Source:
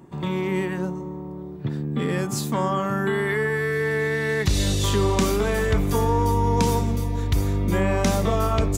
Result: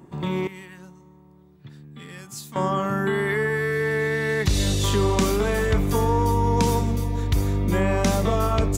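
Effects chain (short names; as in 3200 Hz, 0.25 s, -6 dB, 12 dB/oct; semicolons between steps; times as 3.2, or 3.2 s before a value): 0.47–2.56 passive tone stack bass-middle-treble 5-5-5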